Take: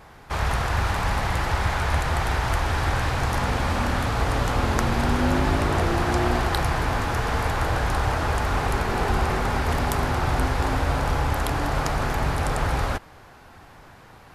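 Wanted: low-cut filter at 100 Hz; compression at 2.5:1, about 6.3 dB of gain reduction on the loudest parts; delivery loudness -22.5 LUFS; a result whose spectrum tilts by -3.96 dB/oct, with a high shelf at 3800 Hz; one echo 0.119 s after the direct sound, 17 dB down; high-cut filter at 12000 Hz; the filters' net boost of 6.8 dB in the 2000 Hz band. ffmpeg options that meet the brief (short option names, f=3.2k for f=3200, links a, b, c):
-af "highpass=100,lowpass=12k,equalizer=f=2k:t=o:g=7.5,highshelf=f=3.8k:g=5,acompressor=threshold=-26dB:ratio=2.5,aecho=1:1:119:0.141,volume=4.5dB"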